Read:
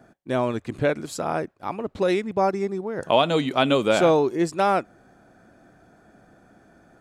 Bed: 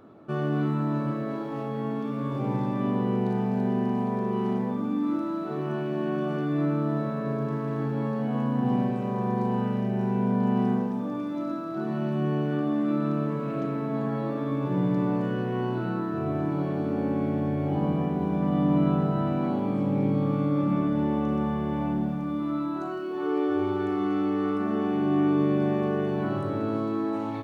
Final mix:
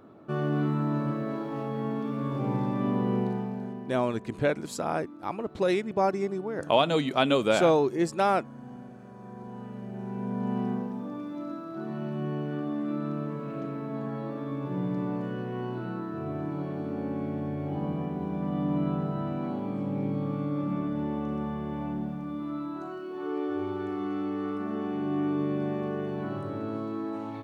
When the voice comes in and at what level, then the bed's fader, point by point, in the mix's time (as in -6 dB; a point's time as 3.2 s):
3.60 s, -3.5 dB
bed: 3.19 s -1 dB
4.1 s -19 dB
9.11 s -19 dB
10.51 s -5.5 dB